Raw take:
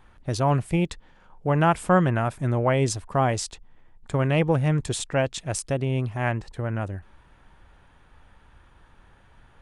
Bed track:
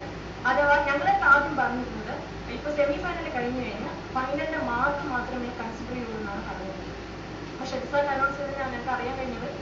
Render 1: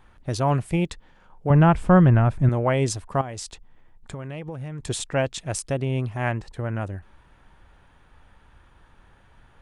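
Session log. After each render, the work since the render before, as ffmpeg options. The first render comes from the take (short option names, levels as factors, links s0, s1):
-filter_complex "[0:a]asettb=1/sr,asplit=3[s0][s1][s2];[s0]atrim=end=1.504[s3];[s1]atrim=start=1.5:end=2.49,asetpts=PTS-STARTPTS,afade=t=in:d=0.004:c=qsin,afade=t=out:st=0.986:d=0.004:c=qsin,aemphasis=mode=reproduction:type=bsi[s4];[s2]atrim=start=2.486[s5];[s3][s4]acrossfade=d=0.004:c1=hsin:c2=qsin[s6];[s6][s5]acrossfade=d=0.004:c1=qsin:c2=hsin,asettb=1/sr,asplit=3[s7][s8][s9];[s7]atrim=end=3.214[s10];[s8]atrim=start=3.21:end=4.89,asetpts=PTS-STARTPTS,afade=t=in:d=0.004:c=qsin,afade=t=out:st=1.676:d=0.004:c=qsin,acompressor=threshold=0.0355:ratio=16:attack=3.2:release=140:knee=1:detection=peak[s11];[s9]atrim=start=4.886[s12];[s10][s11]acrossfade=d=0.004:c1=hsin:c2=qsin[s13];[s13][s12]acrossfade=d=0.004:c1=qsin:c2=hsin"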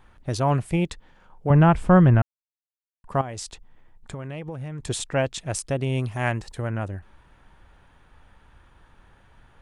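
-filter_complex "[0:a]asettb=1/sr,asplit=3[s0][s1][s2];[s0]atrim=end=5.824[s3];[s1]atrim=start=5.82:end=6.69,asetpts=PTS-STARTPTS,afade=t=in:d=0.004:c=qsin,afade=t=out:st=0.866:d=0.004:c=qsin,highshelf=f=4100:g=10.5[s4];[s2]atrim=start=6.686[s5];[s3][s4]acrossfade=d=0.004:c1=hsin:c2=qsin[s6];[s6][s5]acrossfade=d=0.004:c1=qsin:c2=hsin,asplit=3[s7][s8][s9];[s7]atrim=end=2.22,asetpts=PTS-STARTPTS,afade=t=out:st=2.216:d=0.004:c=hsin[s10];[s8]atrim=start=2.22:end=3.04,asetpts=PTS-STARTPTS,volume=0[s11];[s9]atrim=start=3.04,asetpts=PTS-STARTPTS,afade=t=in:d=0.004:c=hsin[s12];[s10][s11][s12]concat=n=3:v=0:a=1"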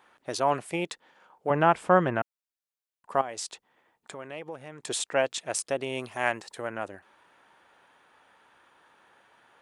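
-af "highpass=400"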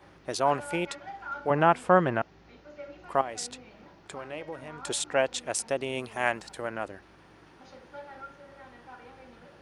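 -filter_complex "[1:a]volume=0.106[s0];[0:a][s0]amix=inputs=2:normalize=0"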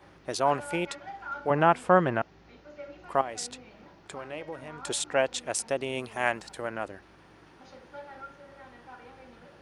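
-af anull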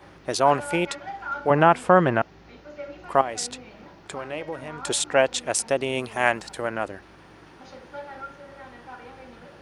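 -af "volume=2,alimiter=limit=0.708:level=0:latency=1"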